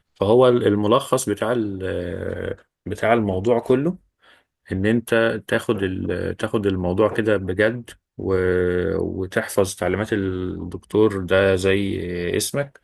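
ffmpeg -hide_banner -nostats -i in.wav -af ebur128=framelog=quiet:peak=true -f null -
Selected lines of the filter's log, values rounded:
Integrated loudness:
  I:         -21.0 LUFS
  Threshold: -31.4 LUFS
Loudness range:
  LRA:         2.0 LU
  Threshold: -42.0 LUFS
  LRA low:   -23.1 LUFS
  LRA high:  -21.1 LUFS
True peak:
  Peak:       -2.2 dBFS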